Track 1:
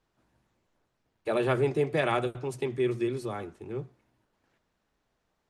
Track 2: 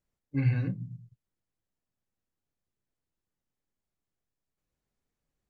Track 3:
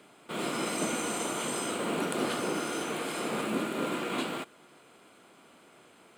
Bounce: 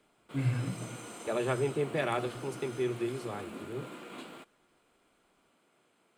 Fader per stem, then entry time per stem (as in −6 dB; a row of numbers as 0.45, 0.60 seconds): −4.5, −4.0, −13.0 decibels; 0.00, 0.00, 0.00 seconds